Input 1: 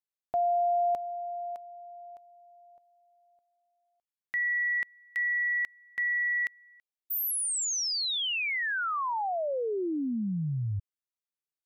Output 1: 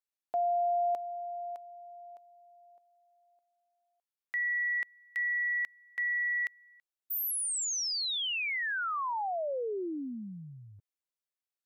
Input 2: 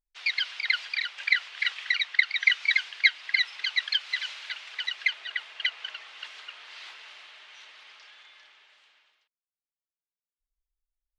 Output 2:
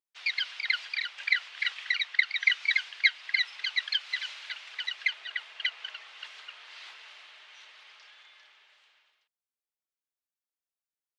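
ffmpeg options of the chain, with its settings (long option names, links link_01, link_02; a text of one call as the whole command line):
ffmpeg -i in.wav -af "highpass=310,volume=-2.5dB" out.wav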